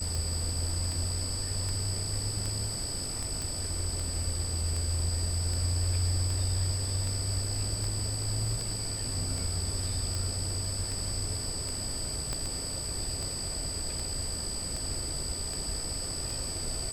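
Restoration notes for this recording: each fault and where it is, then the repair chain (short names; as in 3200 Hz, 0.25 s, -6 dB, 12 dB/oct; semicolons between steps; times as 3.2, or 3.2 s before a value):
tick 78 rpm
tone 8000 Hz -36 dBFS
3.42 pop
12.33 pop -18 dBFS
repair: de-click; notch 8000 Hz, Q 30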